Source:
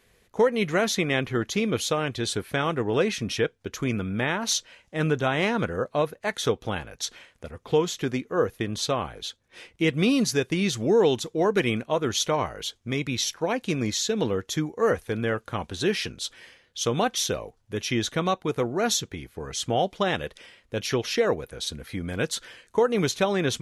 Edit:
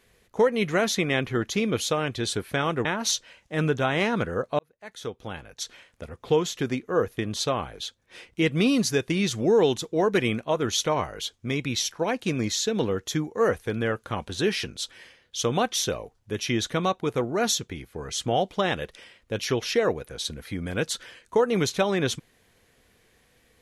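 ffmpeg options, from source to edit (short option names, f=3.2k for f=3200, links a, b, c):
-filter_complex "[0:a]asplit=3[a][b][c];[a]atrim=end=2.852[d];[b]atrim=start=4.268:end=6.01,asetpts=PTS-STARTPTS,afade=t=out:st=1.738:d=0.004:c=hsin[e];[c]atrim=start=6.01,asetpts=PTS-STARTPTS,afade=t=in:d=1.48[f];[e][f]concat=n=2:v=0:a=1[g];[d][g]acrossfade=d=0.004:c1=hsin:c2=hsin"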